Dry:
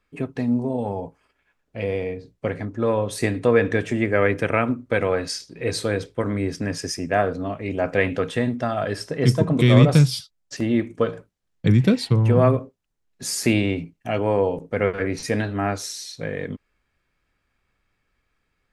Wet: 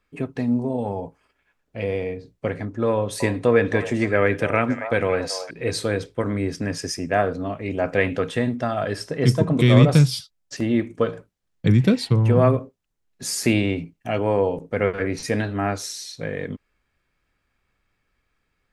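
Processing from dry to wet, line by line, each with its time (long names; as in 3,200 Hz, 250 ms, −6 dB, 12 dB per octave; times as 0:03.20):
0:02.92–0:05.51: echo through a band-pass that steps 279 ms, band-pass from 780 Hz, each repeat 1.4 octaves, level −6 dB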